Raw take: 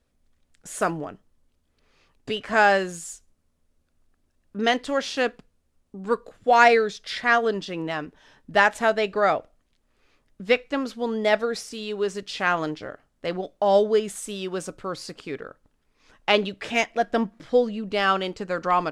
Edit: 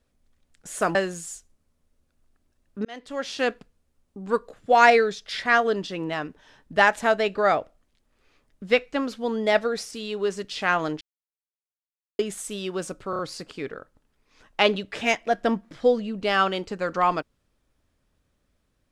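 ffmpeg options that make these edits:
ffmpeg -i in.wav -filter_complex "[0:a]asplit=8[link_01][link_02][link_03][link_04][link_05][link_06][link_07][link_08];[link_01]atrim=end=0.952[link_09];[link_02]atrim=start=2.728:end=4.63,asetpts=PTS-STARTPTS,afade=type=out:start_time=1.898:duration=0.004:curve=hsin[link_10];[link_03]atrim=start=4.63:end=12.79,asetpts=PTS-STARTPTS,afade=type=in:duration=0.64,afade=type=out:start_time=8.156:duration=0.004:curve=hsin[link_11];[link_04]atrim=start=12.79:end=13.97,asetpts=PTS-STARTPTS,volume=0[link_12];[link_05]atrim=start=13.97:end=14.912,asetpts=PTS-STARTPTS,afade=type=in:duration=0.004:curve=hsin[link_13];[link_06]atrim=start=14.878:end=14.912[link_14];[link_07]atrim=start=14.878:end=14.912[link_15];[link_08]atrim=start=14.878[link_16];[link_10][link_11][link_12][link_13]concat=n=4:v=0:a=1[link_17];[link_09][link_17]acrossfade=duration=0.004:curve1=hsin:curve2=hsin[link_18];[link_18][link_14]acrossfade=duration=0.004:curve1=hsin:curve2=hsin[link_19];[link_19][link_15]acrossfade=duration=0.004:curve1=hsin:curve2=hsin[link_20];[link_20][link_16]acrossfade=duration=0.004:curve1=hsin:curve2=hsin" out.wav

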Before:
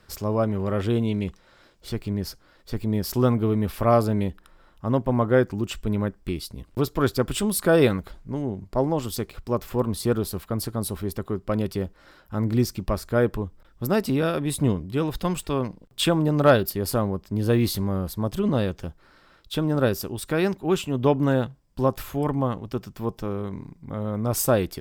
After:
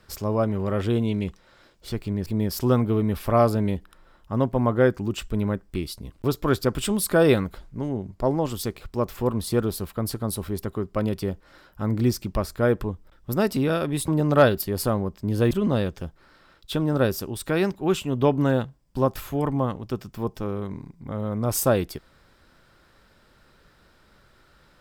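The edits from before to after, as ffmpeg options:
ffmpeg -i in.wav -filter_complex "[0:a]asplit=4[link_01][link_02][link_03][link_04];[link_01]atrim=end=2.262[link_05];[link_02]atrim=start=2.788:end=14.612[link_06];[link_03]atrim=start=16.158:end=17.592[link_07];[link_04]atrim=start=18.328[link_08];[link_05][link_06]acrossfade=duration=0.004:curve1=hsin:curve2=hsin[link_09];[link_09][link_07]acrossfade=duration=0.004:curve1=hsin:curve2=hsin[link_10];[link_10][link_08]acrossfade=duration=0.004:curve1=hsin:curve2=hsin" out.wav

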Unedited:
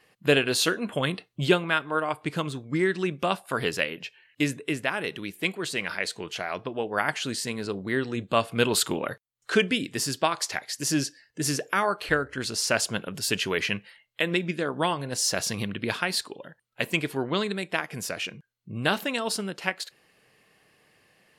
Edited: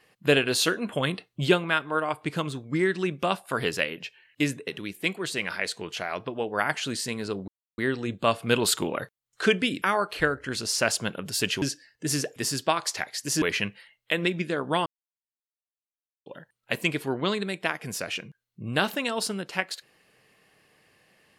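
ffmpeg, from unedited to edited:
ffmpeg -i in.wav -filter_complex "[0:a]asplit=9[link_01][link_02][link_03][link_04][link_05][link_06][link_07][link_08][link_09];[link_01]atrim=end=4.672[link_10];[link_02]atrim=start=5.058:end=7.87,asetpts=PTS-STARTPTS,afade=type=out:start_time=2.808:duration=0.004:curve=hsin,apad=pad_dur=0.3[link_11];[link_03]atrim=start=7.87:end=9.912,asetpts=PTS-STARTPTS,afade=type=in:duration=0.004:curve=hsin[link_12];[link_04]atrim=start=11.708:end=13.512[link_13];[link_05]atrim=start=10.968:end=11.712[link_14];[link_06]atrim=start=9.908:end=10.972[link_15];[link_07]atrim=start=13.508:end=14.95,asetpts=PTS-STARTPTS,afade=type=out:start_time=1.438:duration=0.004:curve=hsin[link_16];[link_08]atrim=start=14.95:end=16.35,asetpts=PTS-STARTPTS,volume=0[link_17];[link_09]atrim=start=16.35,asetpts=PTS-STARTPTS,afade=type=in:duration=0.004:curve=hsin[link_18];[link_11][link_12]concat=n=2:v=0:a=1[link_19];[link_10][link_19]acrossfade=duration=0.004:curve1=hsin:curve2=hsin[link_20];[link_20][link_13]acrossfade=duration=0.004:curve1=hsin:curve2=hsin[link_21];[link_21][link_14]acrossfade=duration=0.004:curve1=hsin:curve2=hsin[link_22];[link_22][link_15]acrossfade=duration=0.004:curve1=hsin:curve2=hsin[link_23];[link_16][link_17][link_18]concat=n=3:v=0:a=1[link_24];[link_23][link_24]acrossfade=duration=0.004:curve1=hsin:curve2=hsin" out.wav

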